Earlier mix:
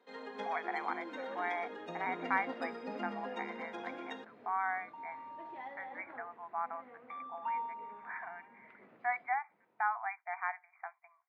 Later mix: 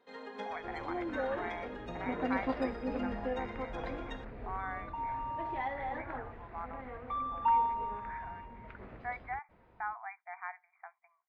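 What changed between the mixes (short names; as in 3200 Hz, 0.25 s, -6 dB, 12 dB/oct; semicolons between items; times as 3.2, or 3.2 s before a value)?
speech -5.5 dB; second sound +9.5 dB; master: remove HPF 180 Hz 24 dB/oct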